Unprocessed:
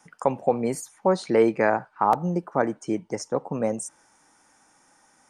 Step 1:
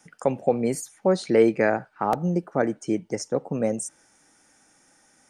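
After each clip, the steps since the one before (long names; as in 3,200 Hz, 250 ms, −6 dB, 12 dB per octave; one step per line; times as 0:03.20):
parametric band 1,000 Hz −10.5 dB 0.68 octaves
level +2 dB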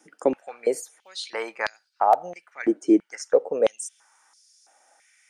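high-pass on a step sequencer 3 Hz 320–4,700 Hz
level −2.5 dB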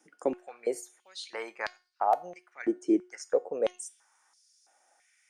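tuned comb filter 360 Hz, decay 0.34 s, harmonics all, mix 60%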